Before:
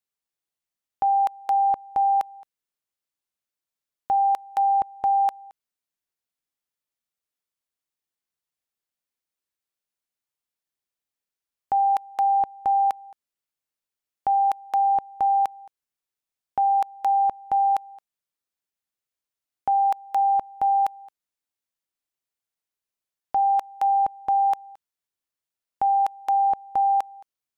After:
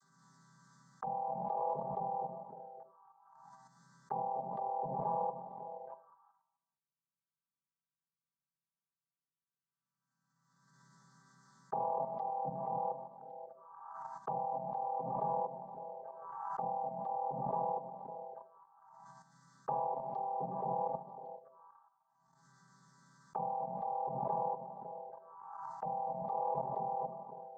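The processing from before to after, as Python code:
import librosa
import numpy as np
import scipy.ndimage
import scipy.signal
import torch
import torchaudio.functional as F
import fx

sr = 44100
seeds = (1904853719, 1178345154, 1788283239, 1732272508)

y = fx.chord_vocoder(x, sr, chord='major triad', root=48)
y = fx.dynamic_eq(y, sr, hz=810.0, q=0.83, threshold_db=-34.0, ratio=4.0, max_db=4)
y = fx.room_shoebox(y, sr, seeds[0], volume_m3=840.0, walls='furnished', distance_m=3.7)
y = fx.env_lowpass_down(y, sr, base_hz=590.0, full_db=-10.5)
y = fx.echo_stepped(y, sr, ms=277, hz=200.0, octaves=1.4, feedback_pct=70, wet_db=-6)
y = fx.level_steps(y, sr, step_db=11)
y = fx.peak_eq(y, sr, hz=540.0, db=-3.0, octaves=0.52)
y = fx.fixed_phaser(y, sr, hz=490.0, stages=8)
y = fx.env_phaser(y, sr, low_hz=470.0, high_hz=1400.0, full_db=-39.0)
y = fx.pre_swell(y, sr, db_per_s=33.0)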